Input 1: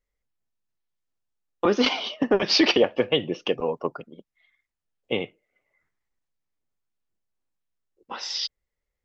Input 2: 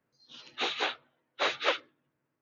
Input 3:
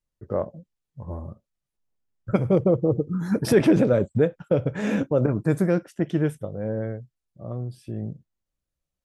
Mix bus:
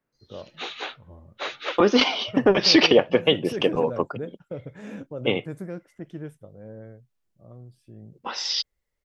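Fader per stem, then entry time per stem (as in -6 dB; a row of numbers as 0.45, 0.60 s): +3.0, -2.5, -13.5 dB; 0.15, 0.00, 0.00 s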